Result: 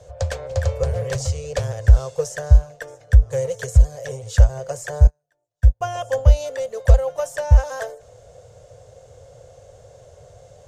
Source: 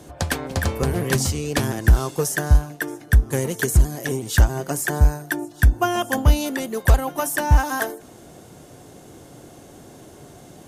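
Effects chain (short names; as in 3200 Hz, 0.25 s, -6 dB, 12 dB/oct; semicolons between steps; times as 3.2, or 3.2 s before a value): EQ curve 110 Hz 0 dB, 230 Hz -28 dB, 340 Hz -28 dB, 510 Hz +6 dB, 820 Hz -11 dB, 3300 Hz -11 dB, 7200 Hz -7 dB, 11000 Hz -24 dB; 5.07–5.81 upward expander 2.5:1, over -33 dBFS; gain +3 dB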